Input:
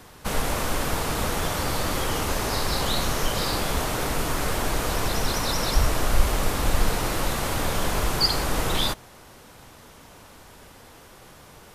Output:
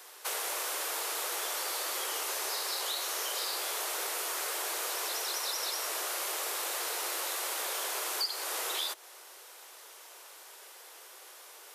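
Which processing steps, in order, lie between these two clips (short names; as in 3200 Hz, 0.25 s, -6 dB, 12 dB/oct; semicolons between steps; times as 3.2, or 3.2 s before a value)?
steep high-pass 340 Hz 72 dB/oct; tilt +2.5 dB/oct; compressor 4:1, threshold -27 dBFS, peak gain reduction 13.5 dB; gain -5 dB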